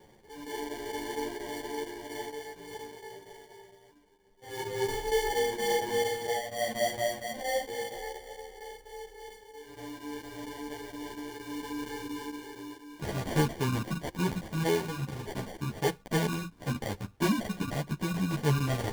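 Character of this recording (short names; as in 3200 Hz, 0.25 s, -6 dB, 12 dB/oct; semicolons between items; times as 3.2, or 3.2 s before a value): chopped level 4.3 Hz, depth 65%, duty 90%; aliases and images of a low sample rate 1300 Hz, jitter 0%; a shimmering, thickened sound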